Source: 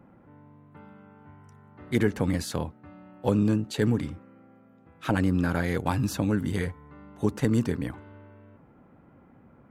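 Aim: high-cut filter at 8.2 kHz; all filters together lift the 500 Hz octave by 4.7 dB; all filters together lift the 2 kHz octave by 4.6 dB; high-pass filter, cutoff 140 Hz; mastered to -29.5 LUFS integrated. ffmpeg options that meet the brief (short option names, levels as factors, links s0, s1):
-af "highpass=140,lowpass=8200,equalizer=f=500:t=o:g=5.5,equalizer=f=2000:t=o:g=5.5,volume=0.708"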